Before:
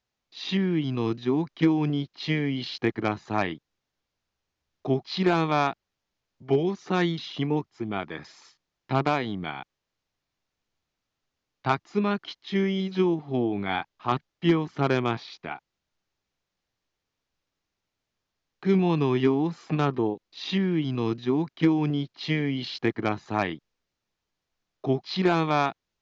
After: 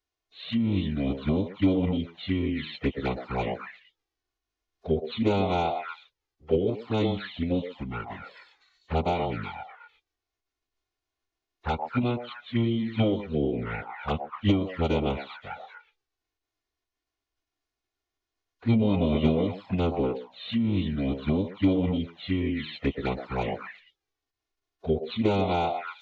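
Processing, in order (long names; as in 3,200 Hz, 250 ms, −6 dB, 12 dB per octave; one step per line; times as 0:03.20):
echo through a band-pass that steps 122 ms, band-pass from 660 Hz, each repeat 1.4 octaves, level −1.5 dB
phase-vocoder pitch shift with formants kept −9 semitones
flanger swept by the level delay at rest 2.8 ms, full sweep at −22 dBFS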